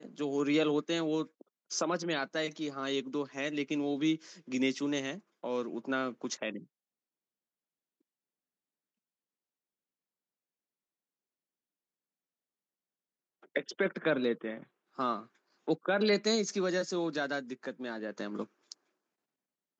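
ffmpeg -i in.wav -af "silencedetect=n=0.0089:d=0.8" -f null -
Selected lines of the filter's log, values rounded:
silence_start: 6.59
silence_end: 13.56 | silence_duration: 6.97
silence_start: 18.72
silence_end: 19.80 | silence_duration: 1.08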